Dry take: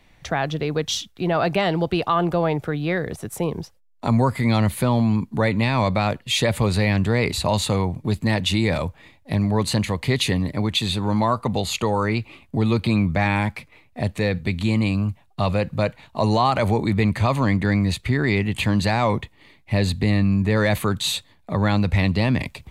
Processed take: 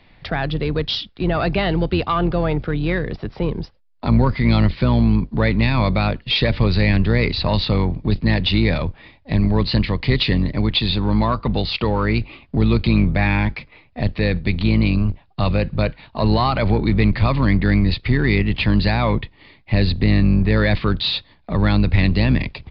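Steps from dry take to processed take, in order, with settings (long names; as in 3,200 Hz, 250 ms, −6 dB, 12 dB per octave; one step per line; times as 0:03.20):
sub-octave generator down 2 octaves, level −4 dB
dynamic equaliser 760 Hz, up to −5 dB, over −34 dBFS, Q 0.96
in parallel at −4 dB: asymmetric clip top −25.5 dBFS
on the sum: downsampling to 11,025 Hz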